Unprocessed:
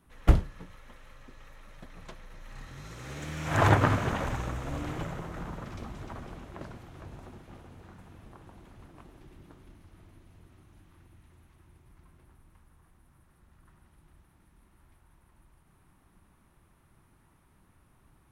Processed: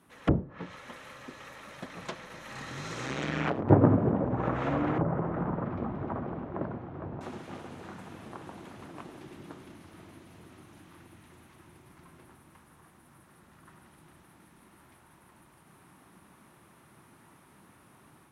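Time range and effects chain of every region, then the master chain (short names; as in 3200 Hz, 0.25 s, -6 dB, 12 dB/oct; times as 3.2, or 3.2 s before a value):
3.06–3.7 negative-ratio compressor -25 dBFS, ratio -0.5 + wrapped overs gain 23 dB + AM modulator 130 Hz, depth 85%
4.98–7.21 LPF 1100 Hz + low shelf 120 Hz +7 dB
whole clip: HPF 170 Hz 12 dB/oct; treble ducked by the level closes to 450 Hz, closed at -30 dBFS; AGC gain up to 5 dB; gain +4.5 dB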